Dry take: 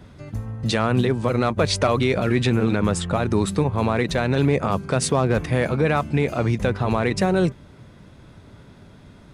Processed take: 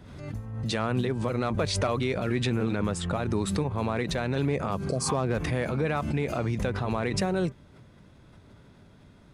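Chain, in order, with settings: spectral replace 4.88–5.12 s, 770–4000 Hz both; swell ahead of each attack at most 49 dB/s; trim -8 dB

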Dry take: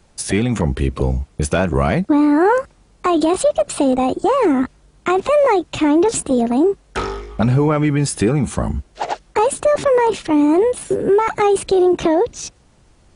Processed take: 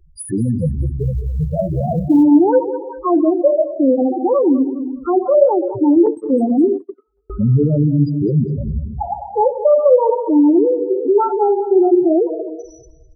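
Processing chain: gated-style reverb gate 450 ms falling, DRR 3 dB; in parallel at 0 dB: compression 16:1, threshold -26 dBFS, peak gain reduction 20 dB; on the sum: loudest bins only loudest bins 4; 0.99–2.23 s: short-mantissa float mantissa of 6-bit; on a send: feedback delay 205 ms, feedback 35%, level -17 dB; 6.06–7.30 s: on the sum: gate -17 dBFS, range -44 dB

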